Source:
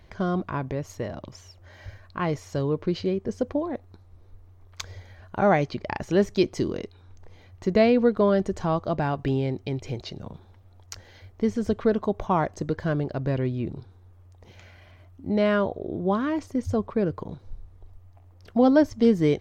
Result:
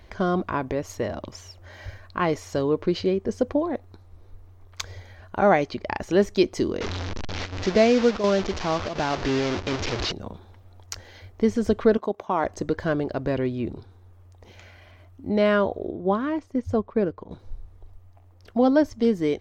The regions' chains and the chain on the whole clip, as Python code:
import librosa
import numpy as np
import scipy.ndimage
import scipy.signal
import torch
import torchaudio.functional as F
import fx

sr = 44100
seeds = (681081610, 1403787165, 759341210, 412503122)

y = fx.chain(x, sr, fx.delta_mod(bps=32000, step_db=-24.5),
    fx.chopper(hz=1.4, depth_pct=60, duty_pct=90), at=(6.81, 10.12))
y = fx.chain(y, sr, fx.highpass(hz=210.0, slope=12),
    fx.level_steps(step_db=13), at=(11.97, 12.45))
y = fx.chain(y, sr, fx.high_shelf(hz=4500.0, db=-8.5),
    fx.upward_expand(threshold_db=-39.0, expansion=1.5), at=(15.91, 17.31))
y = fx.rider(y, sr, range_db=4, speed_s=2.0)
y = fx.peak_eq(y, sr, hz=140.0, db=-9.5, octaves=0.66)
y = y * 10.0 ** (1.5 / 20.0)